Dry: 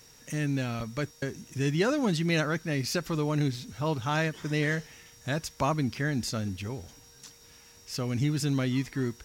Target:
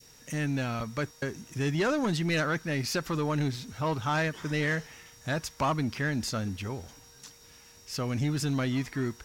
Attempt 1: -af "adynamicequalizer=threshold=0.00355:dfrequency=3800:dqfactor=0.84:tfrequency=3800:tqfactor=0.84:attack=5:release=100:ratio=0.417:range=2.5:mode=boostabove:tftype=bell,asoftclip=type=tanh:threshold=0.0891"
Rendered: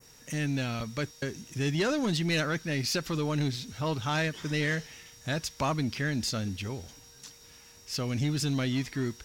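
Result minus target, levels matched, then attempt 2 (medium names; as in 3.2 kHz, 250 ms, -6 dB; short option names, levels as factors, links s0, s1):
4 kHz band +3.5 dB
-af "adynamicequalizer=threshold=0.00355:dfrequency=1100:dqfactor=0.84:tfrequency=1100:tqfactor=0.84:attack=5:release=100:ratio=0.417:range=2.5:mode=boostabove:tftype=bell,asoftclip=type=tanh:threshold=0.0891"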